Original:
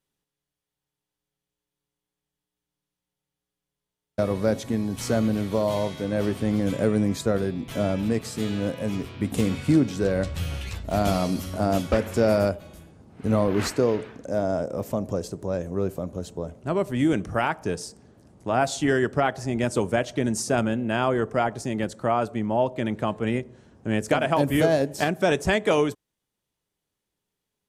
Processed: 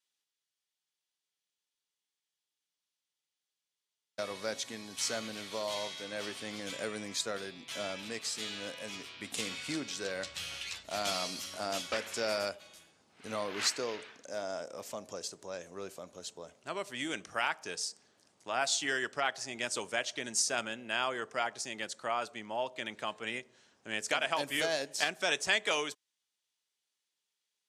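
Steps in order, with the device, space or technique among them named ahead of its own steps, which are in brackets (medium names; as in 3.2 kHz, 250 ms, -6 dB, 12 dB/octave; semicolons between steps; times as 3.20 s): piezo pickup straight into a mixer (low-pass 5.1 kHz 12 dB/octave; differentiator); trim +8.5 dB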